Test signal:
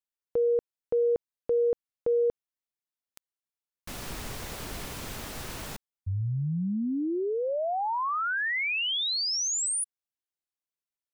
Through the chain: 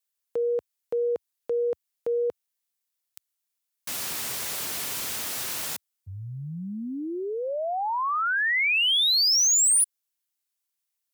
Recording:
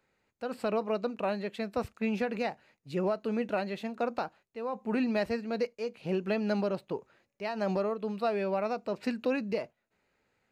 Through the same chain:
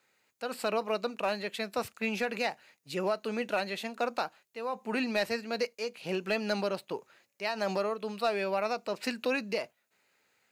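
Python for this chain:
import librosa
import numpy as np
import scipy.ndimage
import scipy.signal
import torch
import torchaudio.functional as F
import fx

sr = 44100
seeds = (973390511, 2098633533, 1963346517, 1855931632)

p1 = scipy.signal.sosfilt(scipy.signal.butter(4, 76.0, 'highpass', fs=sr, output='sos'), x)
p2 = fx.tilt_eq(p1, sr, slope=3.0)
p3 = 10.0 ** (-22.0 / 20.0) * (np.abs((p2 / 10.0 ** (-22.0 / 20.0) + 3.0) % 4.0 - 2.0) - 1.0)
p4 = p2 + (p3 * librosa.db_to_amplitude(-5.5))
p5 = fx.wow_flutter(p4, sr, seeds[0], rate_hz=2.1, depth_cents=15.0)
y = p5 * librosa.db_to_amplitude(-1.5)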